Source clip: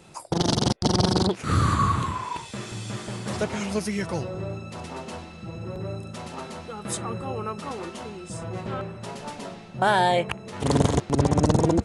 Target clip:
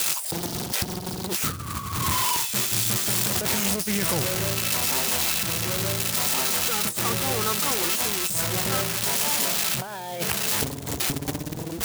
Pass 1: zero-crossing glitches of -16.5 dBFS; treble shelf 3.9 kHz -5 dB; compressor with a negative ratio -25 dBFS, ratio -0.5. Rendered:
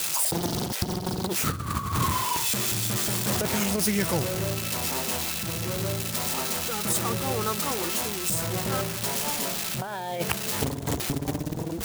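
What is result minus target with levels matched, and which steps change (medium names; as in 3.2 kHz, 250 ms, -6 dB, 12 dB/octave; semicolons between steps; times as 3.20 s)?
zero-crossing glitches: distortion -6 dB
change: zero-crossing glitches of -10 dBFS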